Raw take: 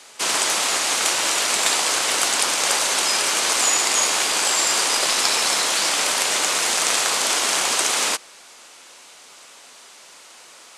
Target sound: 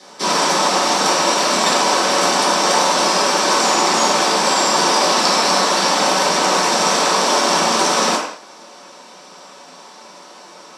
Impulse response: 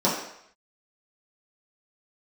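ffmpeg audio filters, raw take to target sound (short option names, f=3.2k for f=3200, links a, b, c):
-filter_complex "[0:a]bass=f=250:g=3,treble=f=4k:g=-4[a];[1:a]atrim=start_sample=2205,afade=t=out:st=0.28:d=0.01,atrim=end_sample=12789[b];[a][b]afir=irnorm=-1:irlink=0,volume=-8dB"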